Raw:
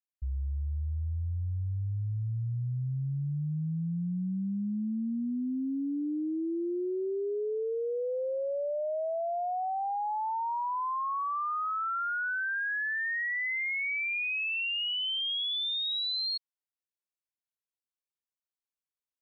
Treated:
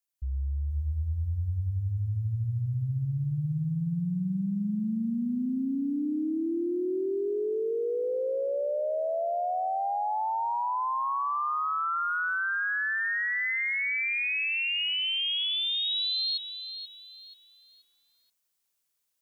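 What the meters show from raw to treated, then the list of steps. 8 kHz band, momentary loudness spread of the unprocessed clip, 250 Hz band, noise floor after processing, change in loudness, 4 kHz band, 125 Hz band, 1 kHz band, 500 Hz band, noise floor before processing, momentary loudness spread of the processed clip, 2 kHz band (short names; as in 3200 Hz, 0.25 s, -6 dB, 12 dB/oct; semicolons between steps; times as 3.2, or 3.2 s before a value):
n/a, 5 LU, +3.0 dB, -78 dBFS, +2.5 dB, +3.0 dB, +3.0 dB, +3.0 dB, +3.0 dB, under -85 dBFS, 6 LU, +3.0 dB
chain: high shelf 3900 Hz +9.5 dB; AGC gain up to 9 dB; limiter -26.5 dBFS, peak gain reduction 12 dB; lo-fi delay 0.481 s, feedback 35%, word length 11-bit, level -10 dB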